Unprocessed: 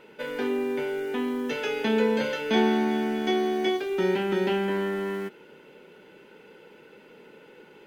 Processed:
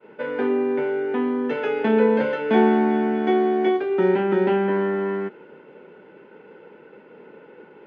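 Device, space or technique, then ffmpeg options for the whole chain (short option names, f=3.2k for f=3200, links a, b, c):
hearing-loss simulation: -af "lowpass=1.6k,agate=range=-33dB:threshold=-50dB:ratio=3:detection=peak,highpass=f=140:p=1,volume=6.5dB"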